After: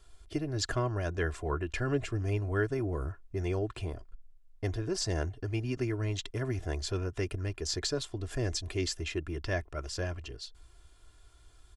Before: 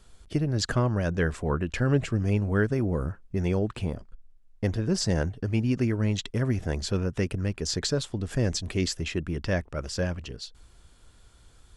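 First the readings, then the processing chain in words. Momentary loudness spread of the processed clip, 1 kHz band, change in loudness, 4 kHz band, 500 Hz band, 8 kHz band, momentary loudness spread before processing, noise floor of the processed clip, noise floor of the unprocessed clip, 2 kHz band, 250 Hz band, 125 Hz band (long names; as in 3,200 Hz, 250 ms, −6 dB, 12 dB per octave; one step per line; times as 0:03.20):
7 LU, −3.5 dB, −6.0 dB, −4.0 dB, −4.5 dB, −4.0 dB, 7 LU, −59 dBFS, −56 dBFS, −4.0 dB, −8.5 dB, −6.5 dB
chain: parametric band 220 Hz −11.5 dB 0.45 octaves
comb filter 2.9 ms, depth 54%
level −5 dB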